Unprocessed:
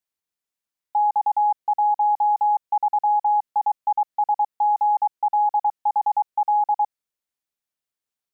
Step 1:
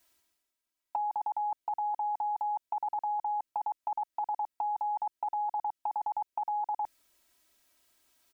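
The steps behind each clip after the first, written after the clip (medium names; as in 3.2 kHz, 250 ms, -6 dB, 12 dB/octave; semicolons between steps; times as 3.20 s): dynamic bell 880 Hz, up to -4 dB, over -29 dBFS, Q 0.92; comb 3.1 ms, depth 92%; reverse; upward compressor, threshold -51 dBFS; reverse; trim -2 dB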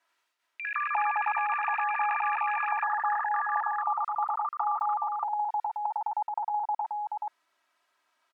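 band-pass filter 1.2 kHz, Q 1.3; delay 428 ms -4.5 dB; ever faster or slower copies 87 ms, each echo +6 st, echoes 3; trim +6 dB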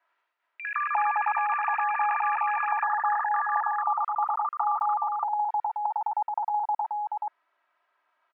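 band-pass 420–2000 Hz; trim +3 dB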